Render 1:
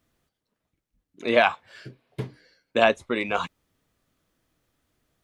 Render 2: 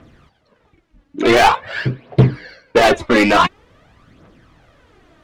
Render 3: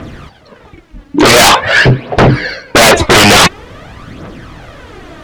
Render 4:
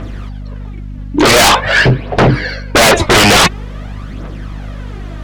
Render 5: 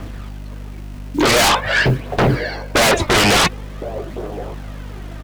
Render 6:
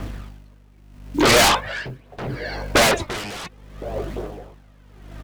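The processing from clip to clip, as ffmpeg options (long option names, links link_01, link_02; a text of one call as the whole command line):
ffmpeg -i in.wav -filter_complex "[0:a]aemphasis=mode=reproduction:type=riaa,asplit=2[link_01][link_02];[link_02]highpass=frequency=720:poles=1,volume=34dB,asoftclip=type=tanh:threshold=-1.5dB[link_03];[link_01][link_03]amix=inputs=2:normalize=0,lowpass=frequency=4000:poles=1,volume=-6dB,aphaser=in_gain=1:out_gain=1:delay=3.7:decay=0.54:speed=0.47:type=triangular,volume=-2.5dB" out.wav
ffmpeg -i in.wav -filter_complex "[0:a]asplit=2[link_01][link_02];[link_02]alimiter=limit=-10dB:level=0:latency=1,volume=-1dB[link_03];[link_01][link_03]amix=inputs=2:normalize=0,aeval=exprs='1.19*sin(PI/2*4.47*val(0)/1.19)':channel_layout=same,volume=-3dB" out.wav
ffmpeg -i in.wav -af "aeval=exprs='val(0)+0.0891*(sin(2*PI*50*n/s)+sin(2*PI*2*50*n/s)/2+sin(2*PI*3*50*n/s)/3+sin(2*PI*4*50*n/s)/4+sin(2*PI*5*50*n/s)/5)':channel_layout=same,volume=-2.5dB" out.wav
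ffmpeg -i in.wav -filter_complex "[0:a]acrossover=split=340|600|3000[link_01][link_02][link_03][link_04];[link_01]acrusher=bits=5:mix=0:aa=0.000001[link_05];[link_02]aecho=1:1:1067:0.631[link_06];[link_05][link_06][link_03][link_04]amix=inputs=4:normalize=0,volume=-6dB" out.wav
ffmpeg -i in.wav -af "aeval=exprs='val(0)*pow(10,-20*(0.5-0.5*cos(2*PI*0.74*n/s))/20)':channel_layout=same" out.wav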